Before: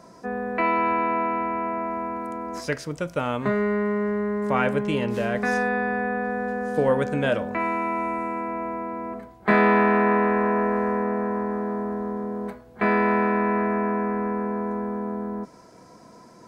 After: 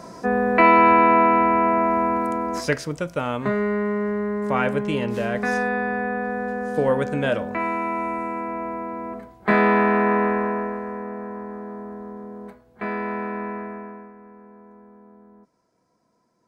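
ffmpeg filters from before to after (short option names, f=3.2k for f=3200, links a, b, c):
-af "volume=8.5dB,afade=t=out:st=2.15:d=0.95:silence=0.398107,afade=t=out:st=10.25:d=0.56:silence=0.421697,afade=t=out:st=13.44:d=0.69:silence=0.223872"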